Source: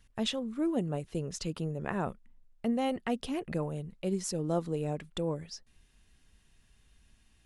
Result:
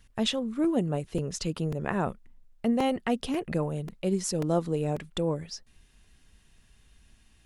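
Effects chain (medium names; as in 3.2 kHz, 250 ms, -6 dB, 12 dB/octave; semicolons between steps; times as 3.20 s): crackling interface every 0.54 s, samples 128, repeat, from 0.64 s; trim +4.5 dB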